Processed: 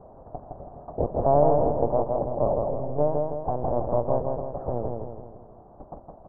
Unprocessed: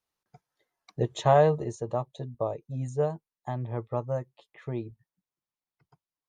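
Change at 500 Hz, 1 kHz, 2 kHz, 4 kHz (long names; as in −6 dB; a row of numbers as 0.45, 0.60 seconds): +5.0 dB, +4.0 dB, below −15 dB, below −35 dB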